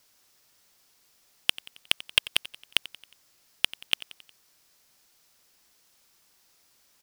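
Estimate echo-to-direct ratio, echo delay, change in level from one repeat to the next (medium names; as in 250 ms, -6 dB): -16.5 dB, 90 ms, -5.5 dB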